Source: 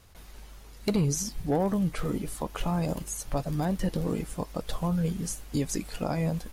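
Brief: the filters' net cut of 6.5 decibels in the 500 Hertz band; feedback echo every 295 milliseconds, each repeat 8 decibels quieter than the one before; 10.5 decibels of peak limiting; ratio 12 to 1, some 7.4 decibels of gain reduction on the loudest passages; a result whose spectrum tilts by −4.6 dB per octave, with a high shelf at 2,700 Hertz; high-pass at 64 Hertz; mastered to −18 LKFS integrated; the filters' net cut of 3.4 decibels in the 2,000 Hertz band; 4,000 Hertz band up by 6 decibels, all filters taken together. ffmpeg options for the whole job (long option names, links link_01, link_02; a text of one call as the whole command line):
ffmpeg -i in.wav -af "highpass=64,equalizer=frequency=500:width_type=o:gain=-8,equalizer=frequency=2000:width_type=o:gain=-7.5,highshelf=frequency=2700:gain=3.5,equalizer=frequency=4000:width_type=o:gain=6.5,acompressor=threshold=-30dB:ratio=12,alimiter=level_in=5dB:limit=-24dB:level=0:latency=1,volume=-5dB,aecho=1:1:295|590|885|1180|1475:0.398|0.159|0.0637|0.0255|0.0102,volume=19.5dB" out.wav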